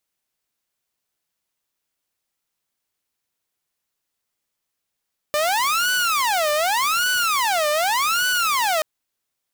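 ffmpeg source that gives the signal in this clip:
ffmpeg -f lavfi -i "aevalsrc='0.168*(2*mod((1042.5*t-447.5/(2*PI*0.85)*sin(2*PI*0.85*t)),1)-1)':duration=3.48:sample_rate=44100" out.wav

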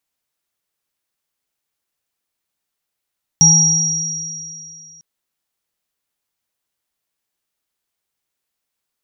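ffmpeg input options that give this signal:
ffmpeg -f lavfi -i "aevalsrc='0.251*pow(10,-3*t/2.19)*sin(2*PI*162*t)+0.0501*pow(10,-3*t/1.1)*sin(2*PI*837*t)+0.501*pow(10,-3*t/2.73)*sin(2*PI*5690*t)':duration=1.6:sample_rate=44100" out.wav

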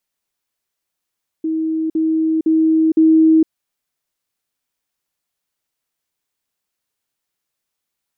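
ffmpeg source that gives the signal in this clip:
ffmpeg -f lavfi -i "aevalsrc='pow(10,(-16.5+3*floor(t/0.51))/20)*sin(2*PI*319*t)*clip(min(mod(t,0.51),0.46-mod(t,0.51))/0.005,0,1)':duration=2.04:sample_rate=44100" out.wav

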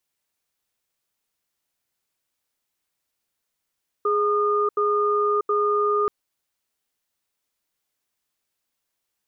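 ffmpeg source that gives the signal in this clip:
ffmpeg -f lavfi -i "aevalsrc='0.0891*(sin(2*PI*416*t)+sin(2*PI*1220*t))*clip(min(mod(t,0.72),0.64-mod(t,0.72))/0.005,0,1)':duration=2.03:sample_rate=44100" out.wav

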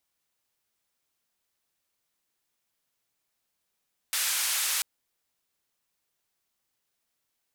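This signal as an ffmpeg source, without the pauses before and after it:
ffmpeg -f lavfi -i "anoisesrc=color=white:duration=0.69:sample_rate=44100:seed=1,highpass=frequency=1300,lowpass=frequency=13000,volume=-20.4dB" out.wav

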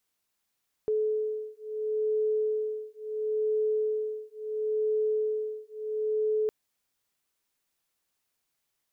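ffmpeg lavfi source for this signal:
ffmpeg -f lavfi -i "aevalsrc='0.0335*(sin(2*PI*430*t)+sin(2*PI*430.73*t))':duration=5.61:sample_rate=44100" out.wav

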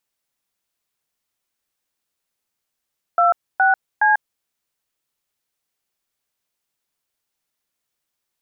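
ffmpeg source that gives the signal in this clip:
ffmpeg -f lavfi -i "aevalsrc='0.188*clip(min(mod(t,0.417),0.143-mod(t,0.417))/0.002,0,1)*(eq(floor(t/0.417),0)*(sin(2*PI*697*mod(t,0.417))+sin(2*PI*1336*mod(t,0.417)))+eq(floor(t/0.417),1)*(sin(2*PI*770*mod(t,0.417))+sin(2*PI*1477*mod(t,0.417)))+eq(floor(t/0.417),2)*(sin(2*PI*852*mod(t,0.417))+sin(2*PI*1633*mod(t,0.417))))':duration=1.251:sample_rate=44100" out.wav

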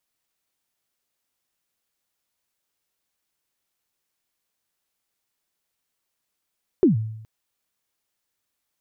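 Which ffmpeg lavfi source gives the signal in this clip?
ffmpeg -f lavfi -i "aevalsrc='0.316*pow(10,-3*t/0.81)*sin(2*PI*(410*0.131/log(110/410)*(exp(log(110/410)*min(t,0.131)/0.131)-1)+110*max(t-0.131,0)))':duration=0.42:sample_rate=44100" out.wav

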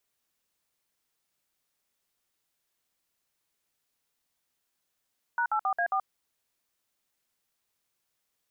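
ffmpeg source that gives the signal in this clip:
ffmpeg -f lavfi -i "aevalsrc='0.0447*clip(min(mod(t,0.135),0.079-mod(t,0.135))/0.002,0,1)*(eq(floor(t/0.135),0)*(sin(2*PI*941*mod(t,0.135))+sin(2*PI*1477*mod(t,0.135)))+eq(floor(t/0.135),1)*(sin(2*PI*852*mod(t,0.135))+sin(2*PI*1336*mod(t,0.135)))+eq(floor(t/0.135),2)*(sin(2*PI*770*mod(t,0.135))+sin(2*PI*1209*mod(t,0.135)))+eq(floor(t/0.135),3)*(sin(2*PI*697*mod(t,0.135))+sin(2*PI*1633*mod(t,0.135)))+eq(floor(t/0.135),4)*(sin(2*PI*770*mod(t,0.135))+sin(2*PI*1209*mod(t,0.135))))':duration=0.675:sample_rate=44100" out.wav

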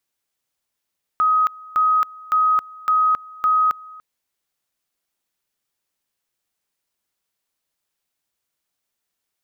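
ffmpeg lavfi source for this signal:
ffmpeg -f lavfi -i "aevalsrc='pow(10,(-13.5-23*gte(mod(t,0.56),0.27))/20)*sin(2*PI*1260*t)':duration=2.8:sample_rate=44100" out.wav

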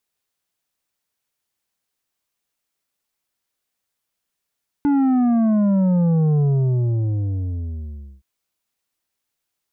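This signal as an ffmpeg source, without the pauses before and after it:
ffmpeg -f lavfi -i "aevalsrc='0.178*clip((3.37-t)/1.83,0,1)*tanh(2.37*sin(2*PI*290*3.37/log(65/290)*(exp(log(65/290)*t/3.37)-1)))/tanh(2.37)':duration=3.37:sample_rate=44100" out.wav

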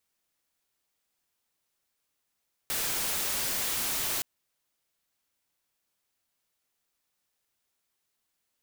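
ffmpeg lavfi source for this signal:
ffmpeg -f lavfi -i "anoisesrc=color=white:amplitude=0.0517:duration=1.52:sample_rate=44100:seed=1" out.wav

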